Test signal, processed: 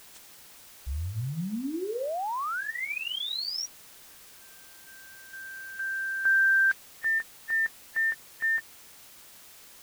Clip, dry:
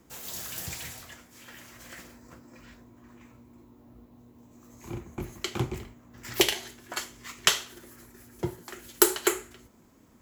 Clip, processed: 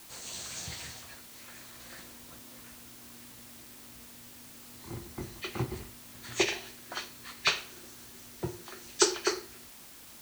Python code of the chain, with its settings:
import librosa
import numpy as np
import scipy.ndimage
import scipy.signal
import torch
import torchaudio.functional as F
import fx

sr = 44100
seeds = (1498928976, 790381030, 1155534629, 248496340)

y = fx.freq_compress(x, sr, knee_hz=1600.0, ratio=1.5)
y = fx.hum_notches(y, sr, base_hz=50, count=10)
y = fx.quant_dither(y, sr, seeds[0], bits=8, dither='triangular')
y = F.gain(torch.from_numpy(y), -3.0).numpy()